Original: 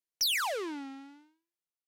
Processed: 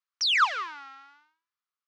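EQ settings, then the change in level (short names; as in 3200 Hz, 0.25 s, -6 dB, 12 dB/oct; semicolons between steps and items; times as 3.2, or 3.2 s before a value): LPF 5900 Hz 24 dB/oct; dynamic EQ 2700 Hz, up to +5 dB, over -42 dBFS, Q 0.71; resonant high-pass 1200 Hz, resonance Q 4.9; 0.0 dB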